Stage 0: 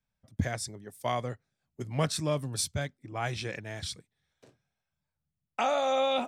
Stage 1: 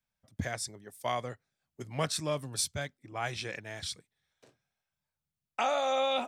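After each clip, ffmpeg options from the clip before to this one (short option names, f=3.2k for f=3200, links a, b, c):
-af "lowshelf=f=400:g=-7"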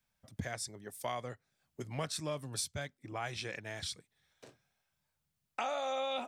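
-af "acompressor=threshold=-49dB:ratio=2,volume=5.5dB"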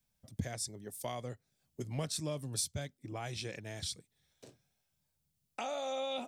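-af "equalizer=f=1.4k:w=0.57:g=-10.5,volume=3.5dB"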